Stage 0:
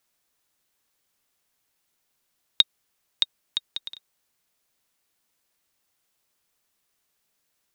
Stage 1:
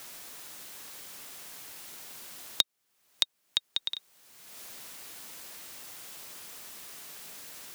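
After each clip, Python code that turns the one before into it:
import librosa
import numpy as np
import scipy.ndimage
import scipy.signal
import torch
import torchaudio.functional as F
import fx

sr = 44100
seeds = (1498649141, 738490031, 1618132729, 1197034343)

y = fx.band_squash(x, sr, depth_pct=100)
y = F.gain(torch.from_numpy(y), -1.0).numpy()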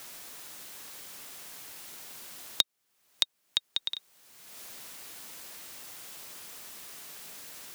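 y = x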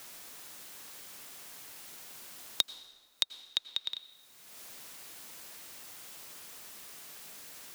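y = fx.rev_plate(x, sr, seeds[0], rt60_s=1.5, hf_ratio=0.7, predelay_ms=75, drr_db=14.5)
y = F.gain(torch.from_numpy(y), -3.0).numpy()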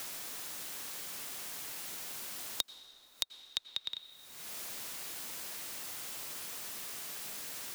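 y = fx.band_squash(x, sr, depth_pct=70)
y = F.gain(torch.from_numpy(y), 5.0).numpy()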